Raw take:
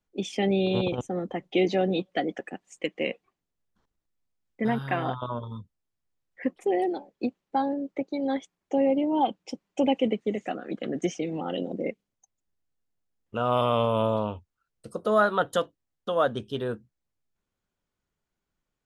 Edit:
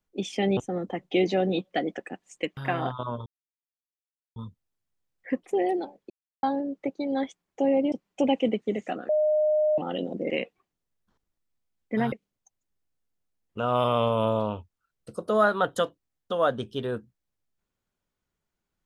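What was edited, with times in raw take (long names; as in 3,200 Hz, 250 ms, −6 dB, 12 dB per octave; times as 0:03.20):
0:00.57–0:00.98: remove
0:02.98–0:04.80: move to 0:11.89
0:05.49: splice in silence 1.10 s
0:07.23–0:07.56: silence
0:09.05–0:09.51: remove
0:10.68–0:11.37: beep over 611 Hz −19.5 dBFS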